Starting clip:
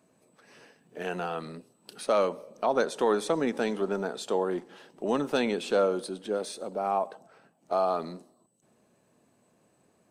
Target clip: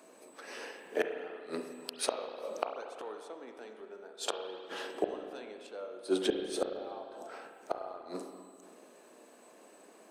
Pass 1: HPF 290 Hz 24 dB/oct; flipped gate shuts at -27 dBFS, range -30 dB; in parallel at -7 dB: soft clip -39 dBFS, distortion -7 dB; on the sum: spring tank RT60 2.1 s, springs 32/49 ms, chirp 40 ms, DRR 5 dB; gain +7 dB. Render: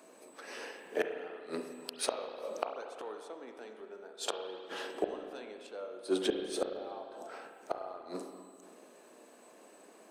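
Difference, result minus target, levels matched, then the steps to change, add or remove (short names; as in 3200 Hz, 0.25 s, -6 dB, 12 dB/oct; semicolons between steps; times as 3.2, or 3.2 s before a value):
soft clip: distortion +9 dB
change: soft clip -29 dBFS, distortion -16 dB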